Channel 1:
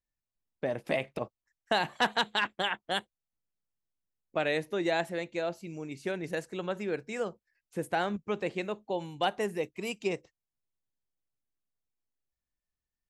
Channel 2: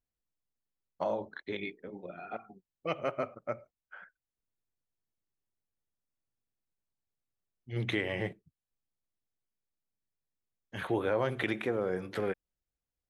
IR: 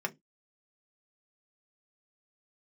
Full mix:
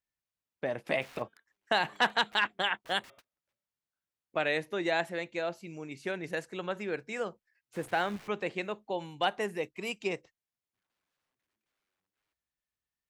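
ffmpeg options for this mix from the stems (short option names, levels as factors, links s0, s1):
-filter_complex "[0:a]highpass=55,volume=0.668,asplit=2[s0][s1];[1:a]lowpass=f=1300:p=1,aeval=exprs='(mod(53.1*val(0)+1,2)-1)/53.1':c=same,bandreject=f=227.7:t=h:w=4,bandreject=f=455.4:t=h:w=4,bandreject=f=683.1:t=h:w=4,bandreject=f=910.8:t=h:w=4,bandreject=f=1138.5:t=h:w=4,bandreject=f=1366.2:t=h:w=4,bandreject=f=1593.9:t=h:w=4,bandreject=f=1821.6:t=h:w=4,bandreject=f=2049.3:t=h:w=4,bandreject=f=2277:t=h:w=4,bandreject=f=2504.7:t=h:w=4,bandreject=f=2732.4:t=h:w=4,bandreject=f=2960.1:t=h:w=4,bandreject=f=3187.8:t=h:w=4,bandreject=f=3415.5:t=h:w=4,bandreject=f=3643.2:t=h:w=4,volume=0.133[s2];[s1]apad=whole_len=577440[s3];[s2][s3]sidechaingate=range=0.0224:threshold=0.001:ratio=16:detection=peak[s4];[s0][s4]amix=inputs=2:normalize=0,equalizer=f=1800:t=o:w=2.8:g=5.5"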